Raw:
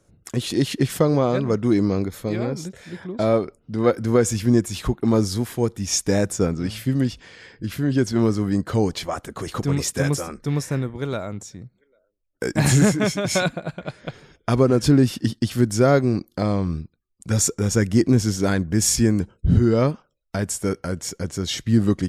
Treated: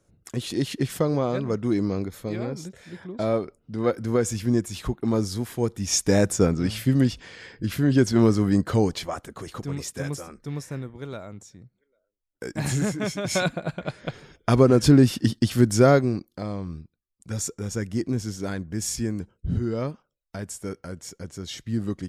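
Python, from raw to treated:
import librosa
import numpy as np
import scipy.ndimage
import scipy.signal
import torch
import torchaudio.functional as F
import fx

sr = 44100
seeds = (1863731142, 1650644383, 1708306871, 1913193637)

y = fx.gain(x, sr, db=fx.line((5.37, -5.0), (6.23, 1.0), (8.62, 1.0), (9.65, -9.0), (12.85, -9.0), (13.7, 0.5), (15.88, 0.5), (16.34, -9.5)))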